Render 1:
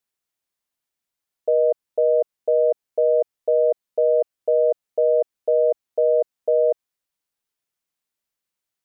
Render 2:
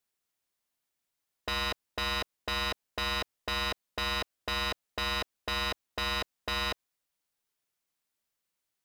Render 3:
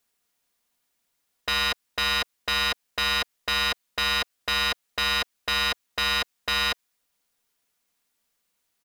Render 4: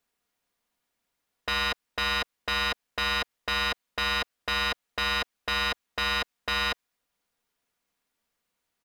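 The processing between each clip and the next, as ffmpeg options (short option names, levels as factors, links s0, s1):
-af "aeval=exprs='0.0473*(abs(mod(val(0)/0.0473+3,4)-2)-1)':c=same"
-filter_complex "[0:a]aecho=1:1:4.2:0.31,acrossover=split=1100[s0][s1];[s0]alimiter=level_in=4.73:limit=0.0631:level=0:latency=1:release=298,volume=0.211[s2];[s2][s1]amix=inputs=2:normalize=0,volume=2.66"
-af "highshelf=f=3500:g=-8.5"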